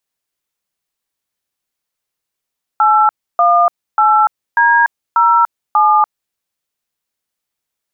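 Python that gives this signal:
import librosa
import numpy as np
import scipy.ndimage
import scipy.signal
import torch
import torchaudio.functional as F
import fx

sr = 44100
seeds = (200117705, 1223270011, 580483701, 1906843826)

y = fx.dtmf(sr, digits='818D07', tone_ms=291, gap_ms=299, level_db=-10.0)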